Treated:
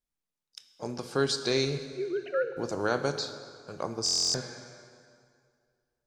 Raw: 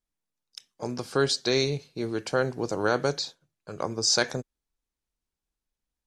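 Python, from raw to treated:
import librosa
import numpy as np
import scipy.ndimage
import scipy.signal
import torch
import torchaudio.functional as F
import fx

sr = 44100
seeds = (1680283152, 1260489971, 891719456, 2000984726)

y = fx.sine_speech(x, sr, at=(1.85, 2.57))
y = fx.rev_plate(y, sr, seeds[0], rt60_s=2.2, hf_ratio=0.8, predelay_ms=0, drr_db=8.5)
y = fx.buffer_glitch(y, sr, at_s=(4.04,), block=1024, repeats=12)
y = F.gain(torch.from_numpy(y), -3.5).numpy()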